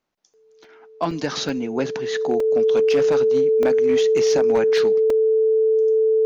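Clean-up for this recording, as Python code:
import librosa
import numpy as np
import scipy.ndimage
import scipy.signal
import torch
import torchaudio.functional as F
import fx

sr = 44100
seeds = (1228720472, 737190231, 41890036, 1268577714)

y = fx.fix_declip(x, sr, threshold_db=-12.0)
y = fx.notch(y, sr, hz=440.0, q=30.0)
y = fx.fix_interpolate(y, sr, at_s=(0.64, 1.11, 1.49, 2.4, 3.63, 5.1), length_ms=2.8)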